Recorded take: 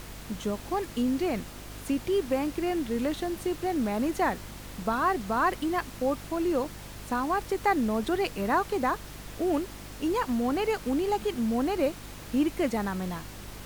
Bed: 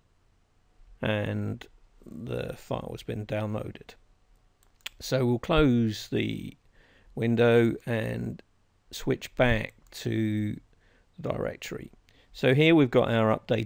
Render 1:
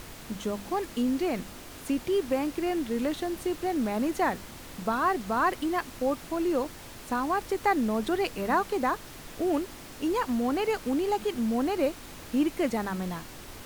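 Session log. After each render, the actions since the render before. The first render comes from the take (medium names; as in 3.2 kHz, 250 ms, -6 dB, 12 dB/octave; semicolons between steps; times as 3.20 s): de-hum 50 Hz, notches 4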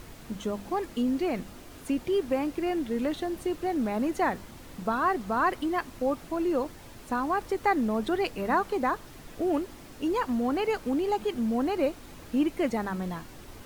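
noise reduction 6 dB, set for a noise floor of -45 dBFS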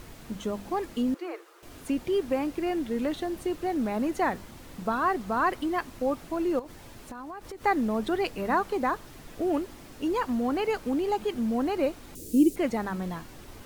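1.14–1.63 s: rippled Chebyshev high-pass 320 Hz, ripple 9 dB; 6.59–7.63 s: compression 16:1, threshold -36 dBFS; 12.15–12.56 s: FFT filter 150 Hz 0 dB, 420 Hz +8 dB, 1 kHz -29 dB, 7.8 kHz +13 dB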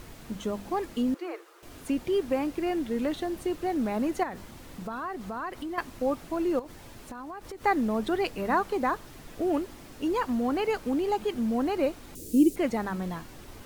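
4.23–5.78 s: compression 3:1, threshold -34 dBFS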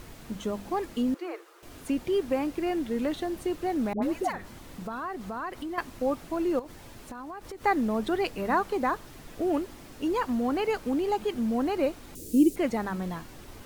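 3.93–4.64 s: phase dispersion highs, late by 92 ms, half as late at 710 Hz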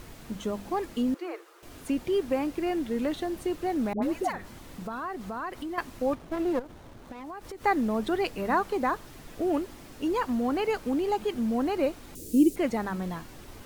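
6.13–7.24 s: sliding maximum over 17 samples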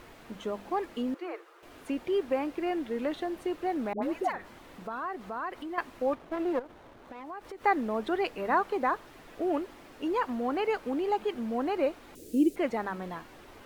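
tone controls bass -11 dB, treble -10 dB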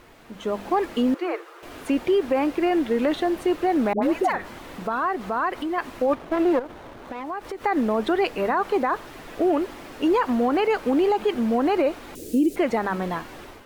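level rider gain up to 11 dB; peak limiter -13.5 dBFS, peak gain reduction 10 dB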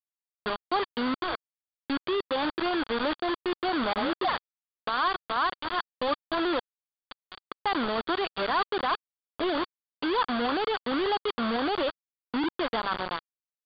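bit crusher 4-bit; rippled Chebyshev low-pass 4.7 kHz, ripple 9 dB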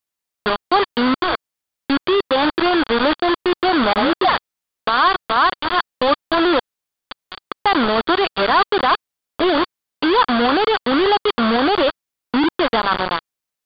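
trim +11.5 dB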